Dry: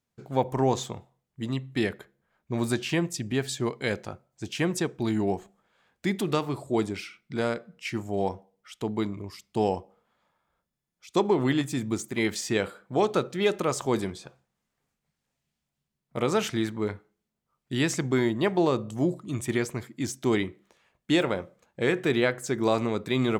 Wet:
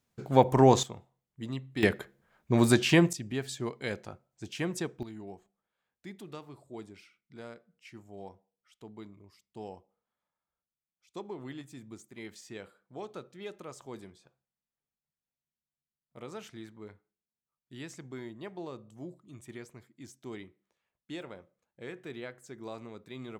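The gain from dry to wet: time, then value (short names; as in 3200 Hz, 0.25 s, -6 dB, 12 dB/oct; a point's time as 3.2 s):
+4 dB
from 0.83 s -6.5 dB
from 1.83 s +4.5 dB
from 3.13 s -6.5 dB
from 5.03 s -18 dB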